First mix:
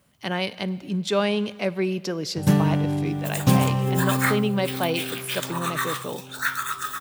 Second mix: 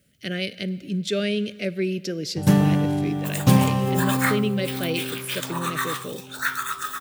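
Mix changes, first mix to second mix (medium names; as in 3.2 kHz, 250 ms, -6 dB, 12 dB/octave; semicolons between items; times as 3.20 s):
speech: add Butterworth band-stop 940 Hz, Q 0.9; first sound: send +8.5 dB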